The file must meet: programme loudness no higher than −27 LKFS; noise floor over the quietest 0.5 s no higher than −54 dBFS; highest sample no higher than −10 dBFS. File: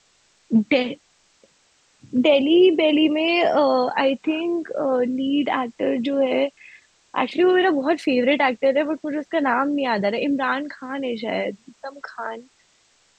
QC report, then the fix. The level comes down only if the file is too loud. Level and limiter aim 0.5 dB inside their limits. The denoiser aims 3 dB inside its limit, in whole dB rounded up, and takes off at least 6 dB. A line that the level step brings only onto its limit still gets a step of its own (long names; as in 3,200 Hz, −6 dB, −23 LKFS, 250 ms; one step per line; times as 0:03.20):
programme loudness −20.5 LKFS: out of spec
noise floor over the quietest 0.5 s −61 dBFS: in spec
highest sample −6.5 dBFS: out of spec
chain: level −7 dB